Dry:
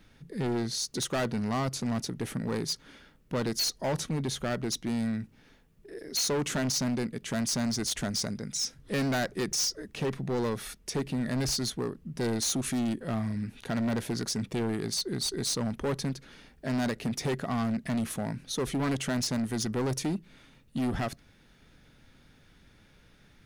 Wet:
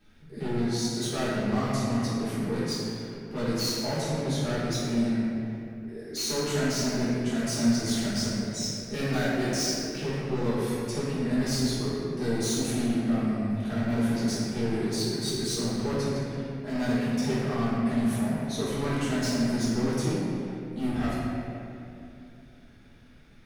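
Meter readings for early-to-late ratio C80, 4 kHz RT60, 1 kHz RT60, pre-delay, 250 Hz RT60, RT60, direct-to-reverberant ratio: −1.5 dB, 1.7 s, 2.4 s, 3 ms, 3.7 s, 2.8 s, −12.0 dB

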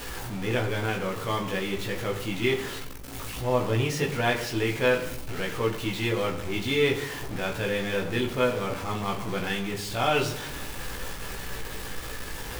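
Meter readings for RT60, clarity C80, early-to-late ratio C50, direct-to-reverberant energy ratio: 0.80 s, 12.0 dB, 10.0 dB, −1.0 dB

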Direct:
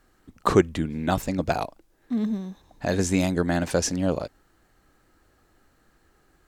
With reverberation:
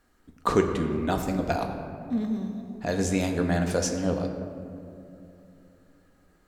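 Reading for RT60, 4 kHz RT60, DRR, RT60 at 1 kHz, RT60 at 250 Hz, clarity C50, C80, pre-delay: 2.7 s, 1.2 s, 3.0 dB, 2.3 s, 3.5 s, 6.5 dB, 7.0 dB, 4 ms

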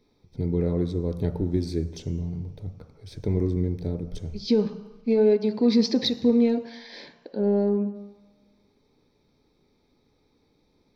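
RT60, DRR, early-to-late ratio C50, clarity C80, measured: 1.1 s, 7.5 dB, 11.5 dB, 13.5 dB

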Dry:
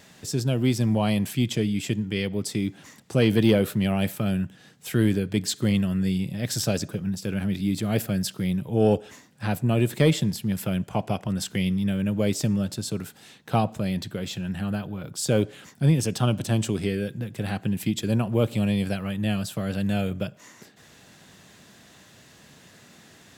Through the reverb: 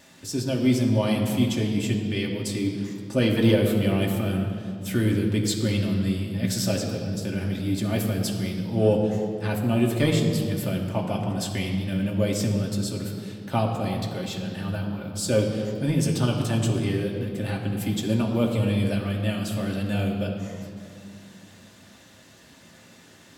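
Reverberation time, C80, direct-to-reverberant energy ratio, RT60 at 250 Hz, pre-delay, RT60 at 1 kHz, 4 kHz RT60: 2.5 s, 5.5 dB, −1.0 dB, 3.6 s, 3 ms, 2.4 s, 1.8 s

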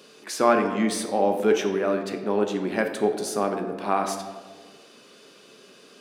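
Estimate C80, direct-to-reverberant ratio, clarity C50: 9.0 dB, 4.0 dB, 7.0 dB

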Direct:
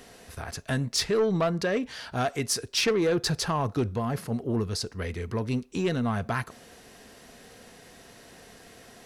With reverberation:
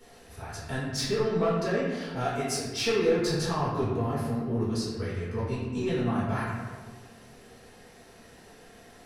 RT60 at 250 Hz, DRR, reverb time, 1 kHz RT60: 1.9 s, −10.0 dB, 1.5 s, 1.4 s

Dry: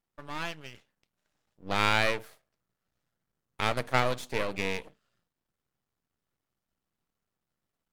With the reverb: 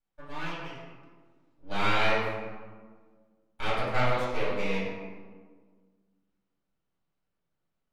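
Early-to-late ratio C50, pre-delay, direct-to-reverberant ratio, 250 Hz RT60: −0.5 dB, 3 ms, −12.0 dB, 2.1 s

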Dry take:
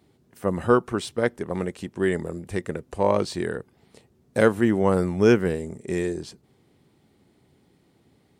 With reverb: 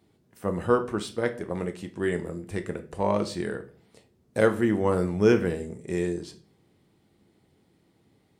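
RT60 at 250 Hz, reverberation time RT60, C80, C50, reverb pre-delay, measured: 0.55 s, 0.45 s, 19.5 dB, 14.5 dB, 6 ms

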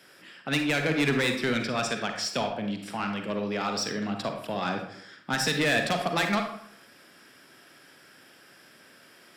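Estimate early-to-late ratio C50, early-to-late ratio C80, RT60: 5.5 dB, 9.0 dB, 0.65 s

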